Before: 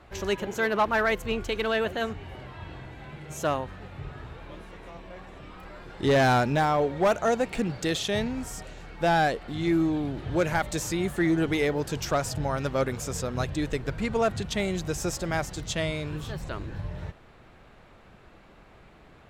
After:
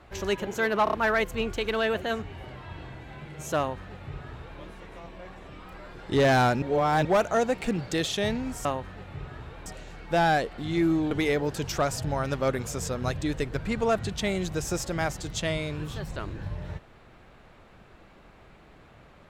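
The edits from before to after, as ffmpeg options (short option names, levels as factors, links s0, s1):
-filter_complex "[0:a]asplit=9[s0][s1][s2][s3][s4][s5][s6][s7][s8];[s0]atrim=end=0.872[s9];[s1]atrim=start=0.838:end=0.872[s10];[s2]atrim=start=0.838:end=0.872[s11];[s3]atrim=start=0.838:end=6.532[s12];[s4]atrim=start=6.528:end=6.962,asetpts=PTS-STARTPTS,areverse[s13];[s5]atrim=start=6.958:end=8.562[s14];[s6]atrim=start=3.488:end=4.502[s15];[s7]atrim=start=8.558:end=10.012[s16];[s8]atrim=start=11.438[s17];[s9][s10]acrossfade=d=0.004:c1=hsin:c2=hsin[s18];[s18][s11]acrossfade=d=0.004:c1=hsin:c2=hsin[s19];[s19][s12]acrossfade=d=0.004:c1=hsin:c2=hsin[s20];[s20][s13]acrossfade=d=0.004:c1=hsin:c2=hsin[s21];[s21][s14]acrossfade=d=0.004:c1=hsin:c2=hsin[s22];[s22][s15]acrossfade=d=0.004:c1=hsin:c2=hsin[s23];[s23][s16]acrossfade=d=0.004:c1=hsin:c2=hsin[s24];[s24][s17]acrossfade=d=0.004:c1=hsin:c2=hsin"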